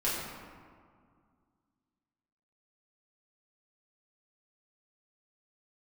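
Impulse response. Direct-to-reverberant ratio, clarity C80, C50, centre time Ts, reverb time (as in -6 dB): -9.0 dB, 1.5 dB, -0.5 dB, 101 ms, 2.0 s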